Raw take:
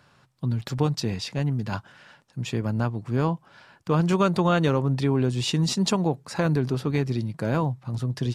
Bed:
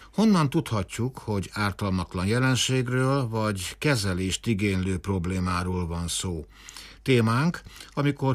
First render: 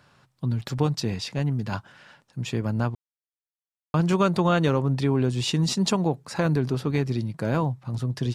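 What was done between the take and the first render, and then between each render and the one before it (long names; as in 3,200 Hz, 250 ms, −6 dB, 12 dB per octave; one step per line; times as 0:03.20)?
0:02.95–0:03.94: silence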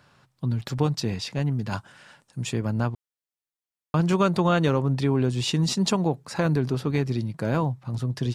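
0:01.71–0:02.53: parametric band 8,800 Hz +10 dB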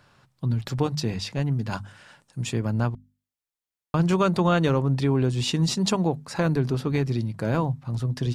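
low-shelf EQ 67 Hz +7 dB
mains-hum notches 50/100/150/200/250 Hz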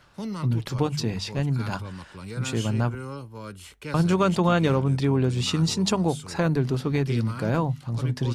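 mix in bed −12.5 dB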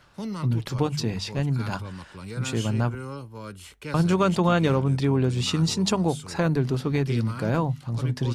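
no processing that can be heard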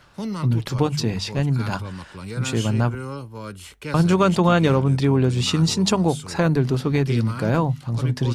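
level +4 dB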